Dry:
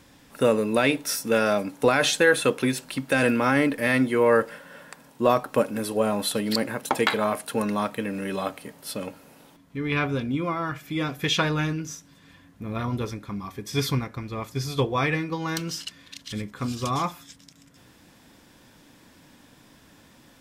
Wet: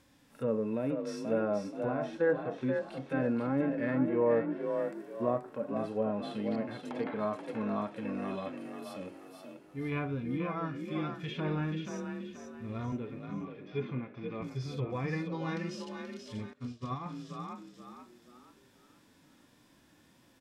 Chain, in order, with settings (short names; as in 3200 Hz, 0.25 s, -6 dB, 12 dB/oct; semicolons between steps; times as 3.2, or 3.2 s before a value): block floating point 7-bit; treble ducked by the level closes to 1000 Hz, closed at -17.5 dBFS; harmonic-percussive split percussive -15 dB; 12.92–14.42 speaker cabinet 160–3100 Hz, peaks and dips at 250 Hz +4 dB, 390 Hz +4 dB, 610 Hz +6 dB, 1100 Hz -3 dB, 2600 Hz +5 dB; on a send: frequency-shifting echo 0.481 s, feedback 38%, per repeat +39 Hz, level -6 dB; 16.53–17.06 on the sum: upward expander 2.5:1, over -38 dBFS; gain -7 dB